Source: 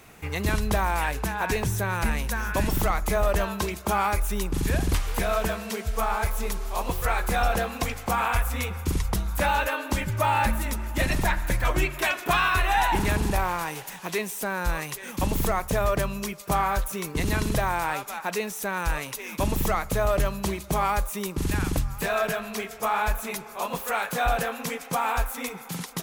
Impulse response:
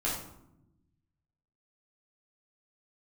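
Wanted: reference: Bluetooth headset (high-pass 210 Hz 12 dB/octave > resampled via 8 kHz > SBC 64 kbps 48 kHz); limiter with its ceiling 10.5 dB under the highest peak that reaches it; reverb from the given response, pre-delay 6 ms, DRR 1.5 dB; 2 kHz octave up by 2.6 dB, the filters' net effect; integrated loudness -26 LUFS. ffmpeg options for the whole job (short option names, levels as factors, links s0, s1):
-filter_complex "[0:a]equalizer=f=2000:t=o:g=3.5,alimiter=limit=0.0708:level=0:latency=1,asplit=2[s0][s1];[1:a]atrim=start_sample=2205,adelay=6[s2];[s1][s2]afir=irnorm=-1:irlink=0,volume=0.398[s3];[s0][s3]amix=inputs=2:normalize=0,highpass=210,aresample=8000,aresample=44100,volume=2" -ar 48000 -c:a sbc -b:a 64k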